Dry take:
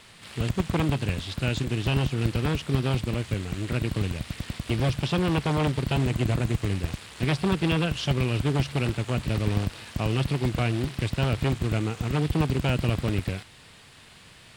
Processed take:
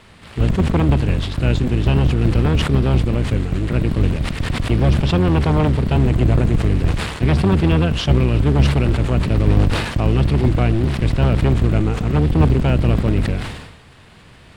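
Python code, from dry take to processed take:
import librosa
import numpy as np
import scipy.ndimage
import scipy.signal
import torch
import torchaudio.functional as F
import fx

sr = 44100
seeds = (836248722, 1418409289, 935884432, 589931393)

y = fx.octave_divider(x, sr, octaves=1, level_db=-1.0)
y = fx.high_shelf(y, sr, hz=2500.0, db=-12.0)
y = fx.sustainer(y, sr, db_per_s=57.0)
y = F.gain(torch.from_numpy(y), 7.5).numpy()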